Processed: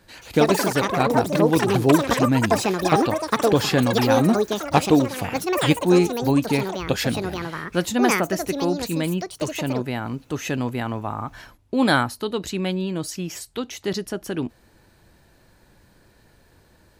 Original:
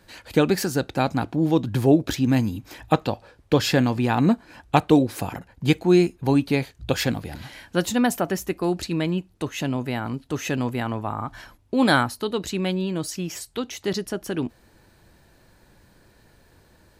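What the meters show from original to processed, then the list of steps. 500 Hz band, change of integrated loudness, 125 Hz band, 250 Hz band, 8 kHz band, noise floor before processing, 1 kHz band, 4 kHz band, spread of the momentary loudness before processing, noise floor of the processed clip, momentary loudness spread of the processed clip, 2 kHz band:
+3.0 dB, +2.0 dB, 0.0 dB, +0.5 dB, +3.5 dB, -58 dBFS, +3.5 dB, +2.5 dB, 12 LU, -57 dBFS, 11 LU, +3.0 dB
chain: ever faster or slower copies 161 ms, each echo +7 st, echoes 3

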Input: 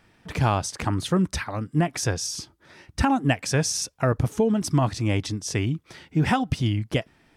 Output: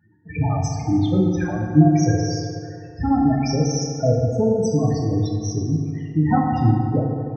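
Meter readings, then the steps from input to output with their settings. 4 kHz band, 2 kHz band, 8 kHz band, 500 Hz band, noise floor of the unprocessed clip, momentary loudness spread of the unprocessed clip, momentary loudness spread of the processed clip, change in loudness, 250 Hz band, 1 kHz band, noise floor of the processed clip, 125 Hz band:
-3.5 dB, -6.0 dB, -3.0 dB, +5.0 dB, -62 dBFS, 7 LU, 8 LU, +4.5 dB, +6.5 dB, +2.5 dB, -39 dBFS, +5.5 dB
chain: high-pass 68 Hz 24 dB/octave; loudest bins only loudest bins 8; tremolo triangle 3.5 Hz, depth 70%; FDN reverb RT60 2.6 s, low-frequency decay 0.85×, high-frequency decay 0.45×, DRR -1.5 dB; trim +5 dB

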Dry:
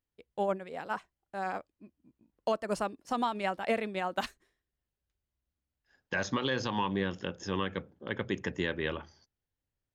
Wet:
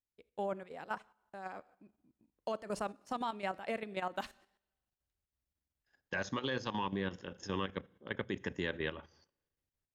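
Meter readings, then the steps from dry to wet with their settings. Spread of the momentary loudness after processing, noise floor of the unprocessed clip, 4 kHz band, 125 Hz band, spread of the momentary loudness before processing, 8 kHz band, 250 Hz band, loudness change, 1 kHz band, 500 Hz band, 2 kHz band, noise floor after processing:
10 LU, under -85 dBFS, -5.5 dB, -5.5 dB, 8 LU, -6.5 dB, -5.5 dB, -5.5 dB, -6.0 dB, -6.0 dB, -5.0 dB, under -85 dBFS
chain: two-slope reverb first 0.72 s, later 1.9 s, from -28 dB, DRR 18.5 dB; level held to a coarse grid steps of 11 dB; trim -2 dB

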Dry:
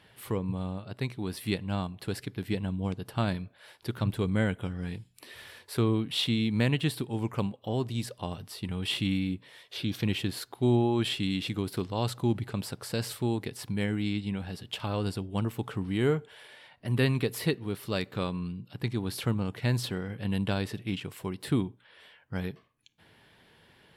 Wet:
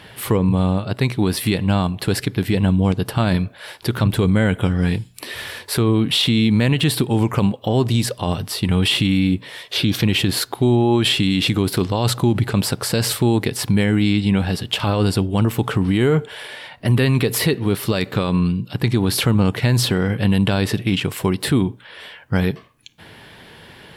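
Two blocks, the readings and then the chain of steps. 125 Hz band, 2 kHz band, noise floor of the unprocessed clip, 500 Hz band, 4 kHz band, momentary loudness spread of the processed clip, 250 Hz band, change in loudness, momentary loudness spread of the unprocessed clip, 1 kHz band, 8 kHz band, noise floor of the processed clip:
+12.5 dB, +12.5 dB, -62 dBFS, +11.0 dB, +13.5 dB, 7 LU, +12.5 dB, +12.5 dB, 11 LU, +12.0 dB, +16.5 dB, -45 dBFS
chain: loudness maximiser +24.5 dB; trim -7.5 dB

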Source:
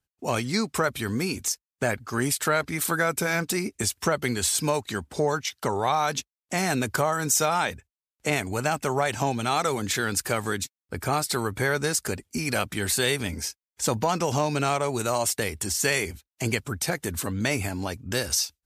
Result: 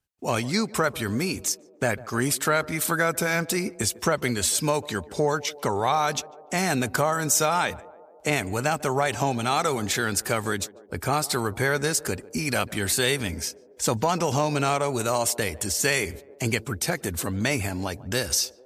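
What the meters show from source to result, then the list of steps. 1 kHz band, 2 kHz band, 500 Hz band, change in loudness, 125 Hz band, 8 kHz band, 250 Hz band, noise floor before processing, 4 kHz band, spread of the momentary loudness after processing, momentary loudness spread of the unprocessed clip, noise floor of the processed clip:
+1.0 dB, +1.0 dB, +1.0 dB, +1.0 dB, +1.0 dB, +1.0 dB, +1.0 dB, under -85 dBFS, +1.0 dB, 6 LU, 7 LU, -51 dBFS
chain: band-passed feedback delay 147 ms, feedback 73%, band-pass 490 Hz, level -18 dB; trim +1 dB

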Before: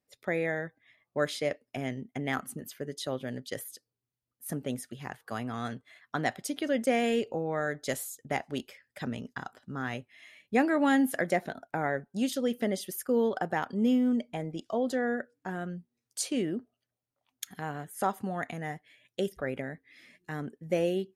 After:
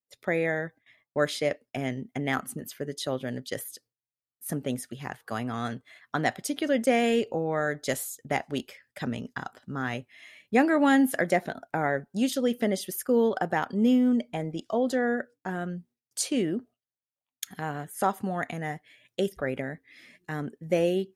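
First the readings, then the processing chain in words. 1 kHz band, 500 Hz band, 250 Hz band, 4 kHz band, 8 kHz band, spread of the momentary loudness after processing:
+3.5 dB, +3.5 dB, +3.5 dB, +3.5 dB, +3.5 dB, 15 LU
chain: gate with hold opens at -54 dBFS; trim +3.5 dB

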